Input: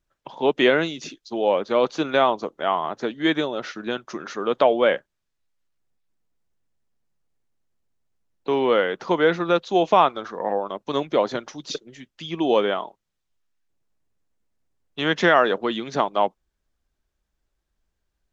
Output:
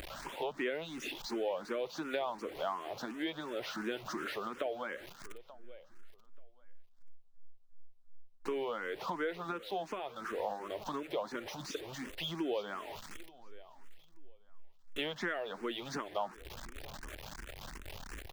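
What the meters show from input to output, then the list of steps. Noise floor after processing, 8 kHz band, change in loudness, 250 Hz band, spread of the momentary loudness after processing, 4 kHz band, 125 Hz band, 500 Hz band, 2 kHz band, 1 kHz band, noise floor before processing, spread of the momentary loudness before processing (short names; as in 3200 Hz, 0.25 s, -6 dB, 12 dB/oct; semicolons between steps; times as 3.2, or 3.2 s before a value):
-58 dBFS, n/a, -17.5 dB, -15.5 dB, 12 LU, -13.0 dB, -14.5 dB, -17.0 dB, -15.0 dB, -17.0 dB, -78 dBFS, 14 LU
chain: zero-crossing step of -31 dBFS; compressor 6:1, threshold -26 dBFS, peak gain reduction 15 dB; tone controls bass -4 dB, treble -13 dB; upward compressor, threshold -35 dBFS; high shelf 3000 Hz +8 dB; feedback echo 0.883 s, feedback 23%, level -19 dB; endless phaser +2.8 Hz; gain -5.5 dB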